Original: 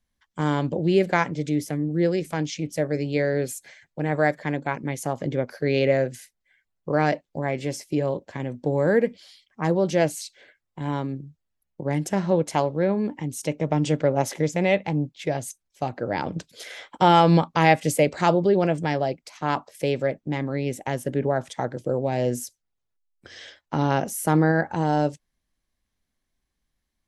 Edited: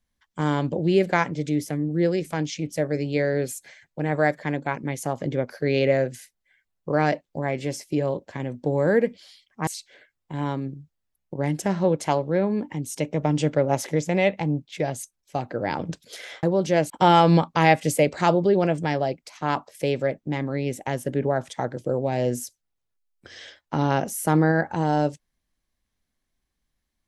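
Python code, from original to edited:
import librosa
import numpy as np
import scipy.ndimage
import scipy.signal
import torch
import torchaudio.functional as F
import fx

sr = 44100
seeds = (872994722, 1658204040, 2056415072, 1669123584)

y = fx.edit(x, sr, fx.move(start_s=9.67, length_s=0.47, to_s=16.9), tone=tone)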